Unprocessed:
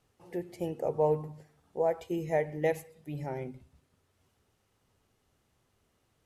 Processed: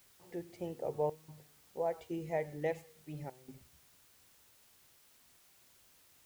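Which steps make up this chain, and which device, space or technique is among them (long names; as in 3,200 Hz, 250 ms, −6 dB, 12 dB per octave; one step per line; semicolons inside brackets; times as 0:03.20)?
worn cassette (low-pass filter 7,100 Hz; tape wow and flutter; tape dropouts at 0:01.10/0:03.30/0:04.97/0:05.38, 180 ms −18 dB; white noise bed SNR 23 dB)
level −6.5 dB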